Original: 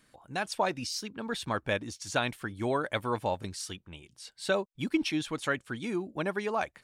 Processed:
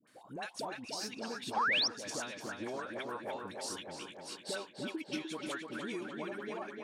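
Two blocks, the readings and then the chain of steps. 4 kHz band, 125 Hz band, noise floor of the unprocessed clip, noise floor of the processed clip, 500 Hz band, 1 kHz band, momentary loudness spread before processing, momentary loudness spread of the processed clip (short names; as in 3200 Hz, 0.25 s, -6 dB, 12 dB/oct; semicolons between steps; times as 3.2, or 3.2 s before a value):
0.0 dB, -14.0 dB, -67 dBFS, -57 dBFS, -9.0 dB, -5.5 dB, 9 LU, 12 LU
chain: ending faded out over 0.93 s; HPF 220 Hz 12 dB/oct; compressor, threshold -38 dBFS, peak gain reduction 14.5 dB; dispersion highs, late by 75 ms, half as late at 1000 Hz; on a send: tape echo 0.298 s, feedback 74%, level -4 dB, low-pass 3700 Hz; on the sum: painted sound rise, 1.56–1.88, 740–6000 Hz -30 dBFS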